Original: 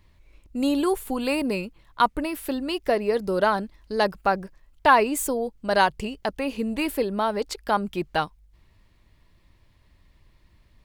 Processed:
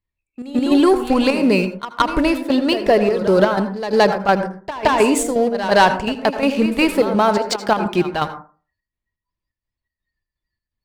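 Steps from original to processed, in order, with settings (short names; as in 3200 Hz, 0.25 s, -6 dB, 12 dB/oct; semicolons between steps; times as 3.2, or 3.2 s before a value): LPF 7300 Hz 12 dB/oct; de-hum 300 Hz, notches 3; spectral noise reduction 27 dB; sample leveller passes 2; in parallel at -1.5 dB: limiter -13.5 dBFS, peak gain reduction 8.5 dB; on the sum: chopper 2.8 Hz, depth 60%, duty 65%; reverse echo 0.17 s -12.5 dB; on a send at -10 dB: reverb RT60 0.35 s, pre-delay 72 ms; on the sum: gain -1 dB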